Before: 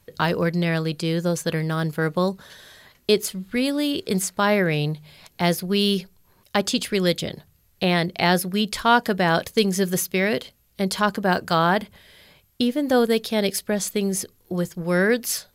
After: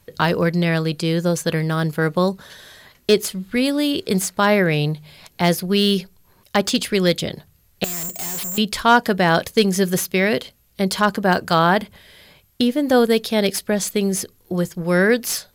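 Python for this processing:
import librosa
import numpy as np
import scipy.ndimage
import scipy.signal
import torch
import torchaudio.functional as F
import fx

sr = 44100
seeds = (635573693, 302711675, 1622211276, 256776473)

y = fx.resample_bad(x, sr, factor=6, down='none', up='zero_stuff', at=(7.84, 8.58))
y = fx.slew_limit(y, sr, full_power_hz=560.0)
y = y * librosa.db_to_amplitude(3.5)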